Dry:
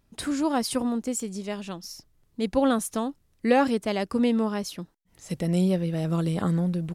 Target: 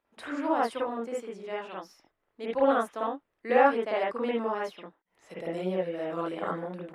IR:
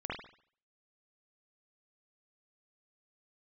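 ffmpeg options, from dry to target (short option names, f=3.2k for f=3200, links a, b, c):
-filter_complex "[0:a]acrossover=split=370 3000:gain=0.0631 1 0.178[a][b][c];[a][b][c]amix=inputs=3:normalize=0[d];[1:a]atrim=start_sample=2205,atrim=end_sample=3528[e];[d][e]afir=irnorm=-1:irlink=0"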